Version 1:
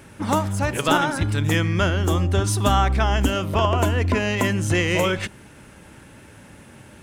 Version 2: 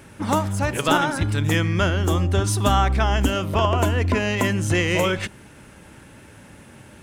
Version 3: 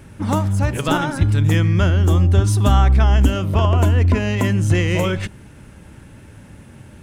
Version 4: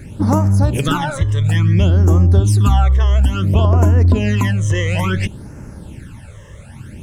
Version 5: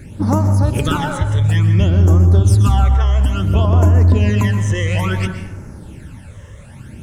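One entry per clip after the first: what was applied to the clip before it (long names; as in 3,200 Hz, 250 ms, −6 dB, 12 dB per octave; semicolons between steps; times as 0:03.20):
no processing that can be heard
low-shelf EQ 210 Hz +11.5 dB; level −2 dB
downward compressor 2 to 1, threshold −21 dBFS, peak gain reduction 7.5 dB; all-pass phaser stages 12, 0.58 Hz, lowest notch 240–3,500 Hz; level +7.5 dB
dense smooth reverb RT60 0.98 s, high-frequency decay 0.5×, pre-delay 110 ms, DRR 7.5 dB; level −1.5 dB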